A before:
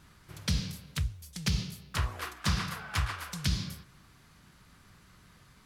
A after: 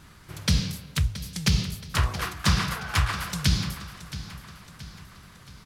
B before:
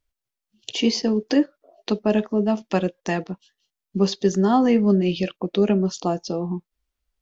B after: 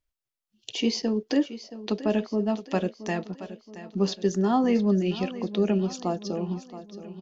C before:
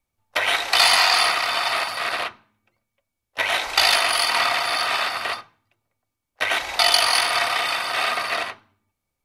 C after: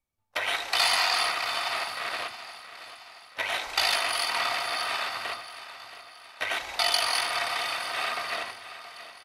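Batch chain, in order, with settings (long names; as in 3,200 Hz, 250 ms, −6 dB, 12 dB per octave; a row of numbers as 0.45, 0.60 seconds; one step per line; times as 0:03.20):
repeating echo 674 ms, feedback 49%, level −14 dB
loudness normalisation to −27 LKFS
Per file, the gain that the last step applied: +7.0, −5.0, −7.5 decibels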